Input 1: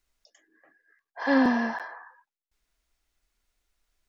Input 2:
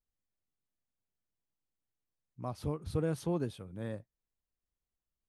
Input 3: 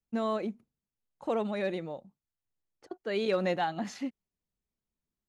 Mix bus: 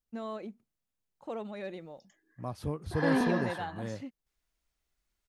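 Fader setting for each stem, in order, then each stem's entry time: -6.5, +1.0, -8.0 dB; 1.75, 0.00, 0.00 s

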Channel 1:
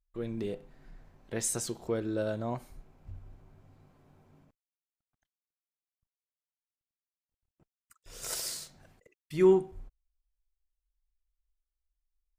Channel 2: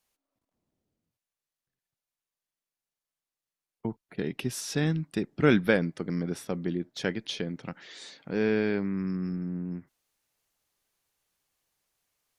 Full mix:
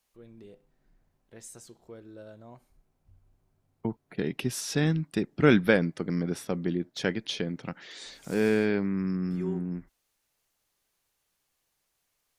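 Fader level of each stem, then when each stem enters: -14.5, +1.5 dB; 0.00, 0.00 s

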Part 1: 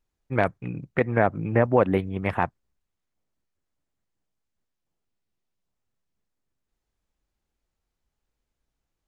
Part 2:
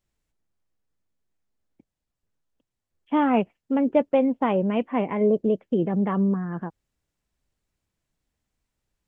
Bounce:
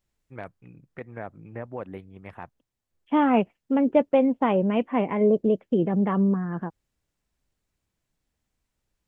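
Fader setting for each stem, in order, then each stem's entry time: -16.0, +0.5 dB; 0.00, 0.00 s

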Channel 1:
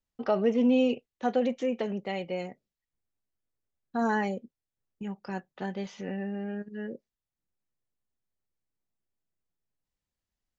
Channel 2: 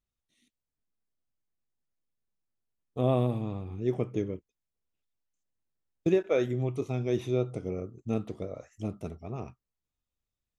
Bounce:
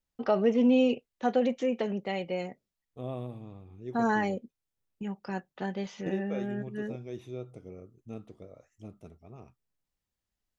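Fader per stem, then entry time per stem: +0.5, -11.5 dB; 0.00, 0.00 s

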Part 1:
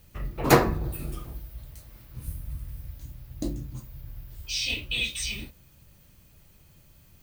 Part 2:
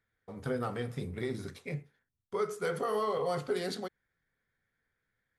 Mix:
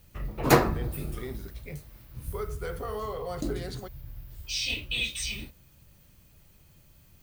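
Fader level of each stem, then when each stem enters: -1.5, -3.5 dB; 0.00, 0.00 s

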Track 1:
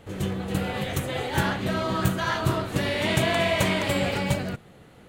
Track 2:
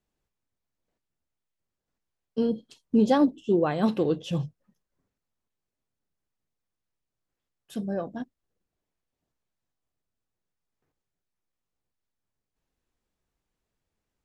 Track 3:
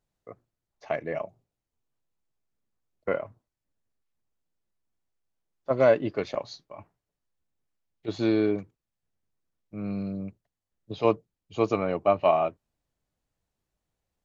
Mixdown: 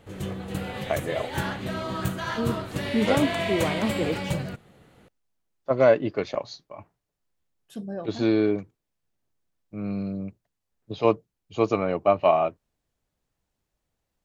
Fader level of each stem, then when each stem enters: -4.5, -3.5, +2.0 dB; 0.00, 0.00, 0.00 s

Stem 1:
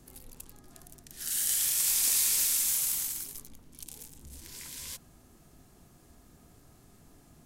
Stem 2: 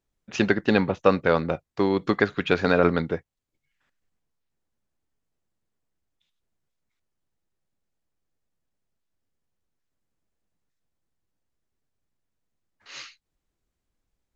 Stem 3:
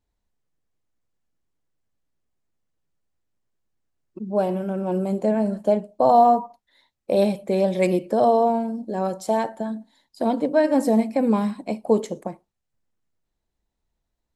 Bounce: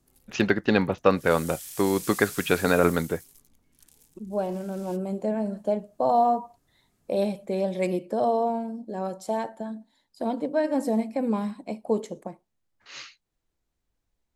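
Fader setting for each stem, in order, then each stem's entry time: -12.5, -1.0, -6.0 dB; 0.00, 0.00, 0.00 s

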